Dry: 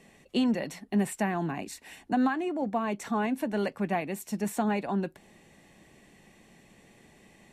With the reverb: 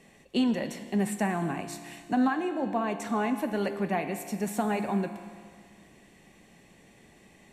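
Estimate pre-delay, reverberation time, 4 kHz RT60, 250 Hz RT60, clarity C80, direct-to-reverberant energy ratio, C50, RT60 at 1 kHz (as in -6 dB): 6 ms, 1.9 s, 1.9 s, 1.9 s, 10.5 dB, 7.5 dB, 9.0 dB, 1.9 s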